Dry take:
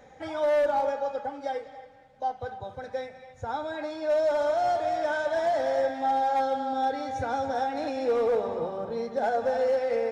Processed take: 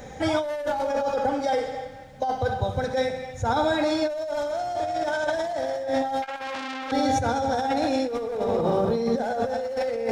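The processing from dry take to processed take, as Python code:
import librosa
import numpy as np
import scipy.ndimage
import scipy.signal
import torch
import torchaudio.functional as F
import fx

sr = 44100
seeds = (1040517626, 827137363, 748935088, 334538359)

y = fx.high_shelf(x, sr, hz=3900.0, db=11.5)
y = fx.quant_float(y, sr, bits=6)
y = fx.low_shelf(y, sr, hz=300.0, db=10.5)
y = fx.echo_feedback(y, sr, ms=65, feedback_pct=52, wet_db=-10)
y = fx.over_compress(y, sr, threshold_db=-29.0, ratio=-1.0)
y = fx.transformer_sat(y, sr, knee_hz=2900.0, at=(6.22, 6.92))
y = y * librosa.db_to_amplitude(3.5)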